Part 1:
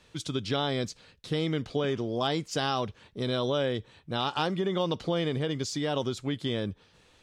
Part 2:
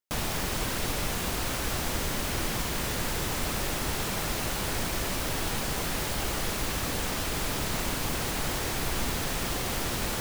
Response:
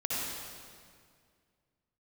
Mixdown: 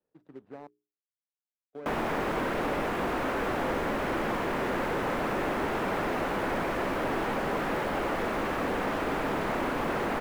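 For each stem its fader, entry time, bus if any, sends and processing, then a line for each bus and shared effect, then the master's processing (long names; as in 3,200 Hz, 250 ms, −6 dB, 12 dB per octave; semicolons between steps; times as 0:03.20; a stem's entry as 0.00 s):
−14.0 dB, 0.00 s, muted 0:00.67–0:01.73, no send, running median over 41 samples
+0.5 dB, 1.75 s, send −17.5 dB, low-shelf EQ 390 Hz +5.5 dB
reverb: on, RT60 2.1 s, pre-delay 54 ms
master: three-way crossover with the lows and the highs turned down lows −19 dB, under 230 Hz, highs −23 dB, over 2,200 Hz; mains-hum notches 60/120/180/240/300/360/420 Hz; leveller curve on the samples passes 1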